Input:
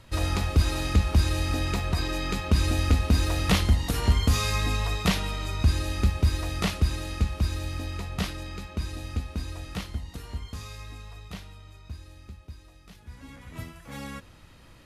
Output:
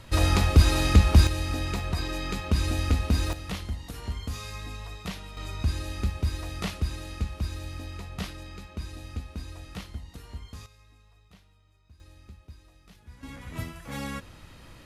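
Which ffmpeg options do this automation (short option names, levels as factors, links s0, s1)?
-af "asetnsamples=n=441:p=0,asendcmd='1.27 volume volume -2.5dB;3.33 volume volume -12dB;5.37 volume volume -5dB;10.66 volume volume -16dB;12 volume volume -4dB;13.23 volume volume 3.5dB',volume=1.68"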